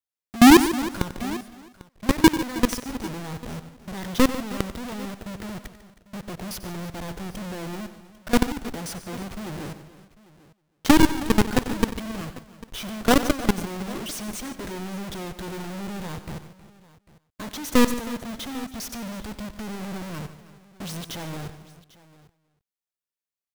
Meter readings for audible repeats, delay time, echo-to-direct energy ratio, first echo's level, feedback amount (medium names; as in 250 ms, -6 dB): 6, 93 ms, -10.0 dB, -14.5 dB, no regular repeats